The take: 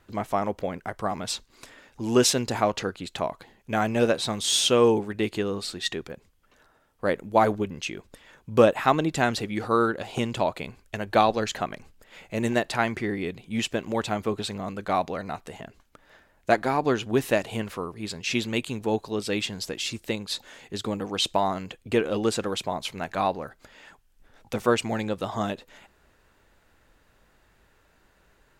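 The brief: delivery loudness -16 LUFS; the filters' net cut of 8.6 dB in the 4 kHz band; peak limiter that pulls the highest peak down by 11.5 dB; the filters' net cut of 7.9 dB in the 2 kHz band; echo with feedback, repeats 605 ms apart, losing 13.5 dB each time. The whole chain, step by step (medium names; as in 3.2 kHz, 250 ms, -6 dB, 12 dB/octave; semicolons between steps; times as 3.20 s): peaking EQ 2 kHz -9 dB; peaking EQ 4 kHz -8 dB; peak limiter -16 dBFS; feedback delay 605 ms, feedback 21%, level -13.5 dB; trim +14 dB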